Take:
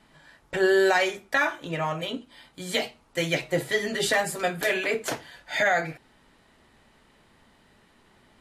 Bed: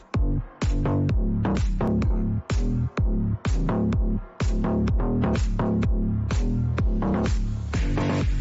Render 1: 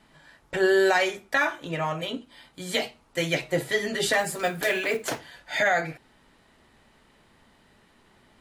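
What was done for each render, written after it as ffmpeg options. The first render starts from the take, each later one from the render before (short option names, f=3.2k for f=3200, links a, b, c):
-filter_complex "[0:a]asettb=1/sr,asplit=3[a][b][c];[a]atrim=end=4.214[d];[b]atrim=start=4.21:end=5.19,asetpts=PTS-STARTPTS,afade=t=in:d=0.004:c=qsin,afade=t=out:st=0.976:d=0.004:c=qsin,acrusher=bits=6:mode=log:mix=0:aa=0.000001[e];[c]atrim=start=5.186[f];[d][e]acrossfade=d=0.004:c1=hsin:c2=qsin[g];[g][f]acrossfade=d=0.004:c1=qsin:c2=hsin"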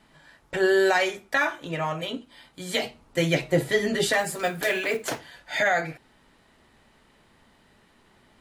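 -filter_complex "[0:a]asettb=1/sr,asplit=3[a][b][c];[a]atrim=end=2.834[d];[b]atrim=start=2.83:end=4.04,asetpts=PTS-STARTPTS,afade=t=in:d=0.004:c=qsin,afade=t=out:st=1.206:d=0.004:c=qsin,lowshelf=f=470:g=7[e];[c]atrim=start=4.036[f];[d][e]acrossfade=d=0.004:c1=hsin:c2=qsin[g];[g][f]acrossfade=d=0.004:c1=qsin:c2=hsin"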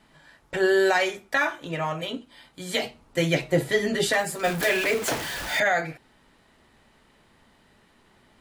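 -filter_complex "[0:a]asettb=1/sr,asplit=3[a][b][c];[a]atrim=end=4.444[d];[b]atrim=start=4.44:end=5.6,asetpts=PTS-STARTPTS,afade=t=in:d=0.004:c=qsin,afade=t=out:st=1.156:d=0.004:c=qsin,aeval=exprs='val(0)+0.5*0.0422*sgn(val(0))':c=same[e];[c]atrim=start=5.596[f];[d][e]acrossfade=d=0.004:c1=hsin:c2=qsin[g];[g][f]acrossfade=d=0.004:c1=qsin:c2=hsin"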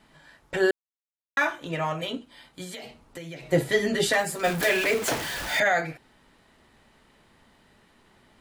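-filter_complex "[0:a]asettb=1/sr,asplit=3[a][b][c];[a]atrim=end=2.644[d];[b]atrim=start=2.64:end=3.48,asetpts=PTS-STARTPTS,afade=t=in:d=0.004:c=qsin,afade=t=out:st=0.836:d=0.004:c=qsin,acompressor=threshold=-35dB:ratio=12:attack=3.2:release=140:knee=1:detection=peak[e];[c]atrim=start=3.476[f];[d][e]acrossfade=d=0.004:c1=hsin:c2=qsin[g];[g][f]acrossfade=d=0.004:c1=qsin:c2=hsin,asplit=3[h][i][j];[h]atrim=end=0.71,asetpts=PTS-STARTPTS,afade=t=out:st=0.706:d=0.004:c=hsin[k];[i]atrim=start=0.71:end=1.37,asetpts=PTS-STARTPTS,volume=0[l];[j]atrim=start=1.37,asetpts=PTS-STARTPTS,afade=t=in:d=0.004:c=hsin[m];[k][l][m]concat=n=3:v=0:a=1"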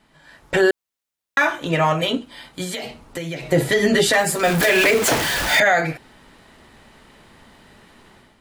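-af "alimiter=limit=-17.5dB:level=0:latency=1:release=100,dynaudnorm=f=130:g=5:m=10.5dB"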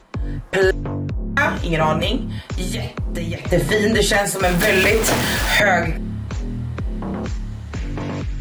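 -filter_complex "[1:a]volume=-2dB[a];[0:a][a]amix=inputs=2:normalize=0"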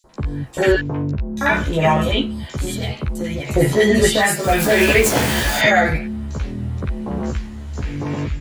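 -filter_complex "[0:a]asplit=2[a][b];[b]adelay=14,volume=-2dB[c];[a][c]amix=inputs=2:normalize=0,acrossover=split=1300|4500[d][e][f];[d]adelay=40[g];[e]adelay=90[h];[g][h][f]amix=inputs=3:normalize=0"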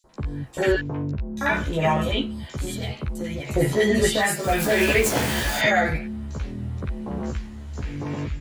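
-af "volume=-5.5dB"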